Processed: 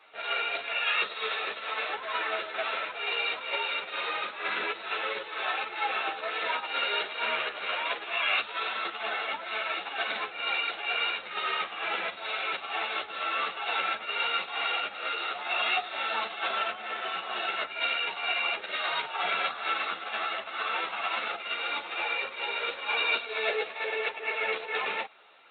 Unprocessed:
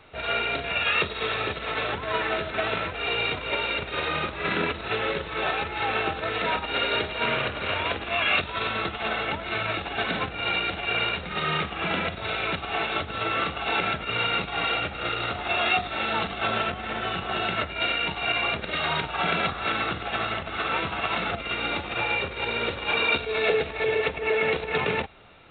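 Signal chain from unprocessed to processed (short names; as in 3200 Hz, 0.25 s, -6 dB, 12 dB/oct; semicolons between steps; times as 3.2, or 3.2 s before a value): HPF 600 Hz 12 dB/oct; ensemble effect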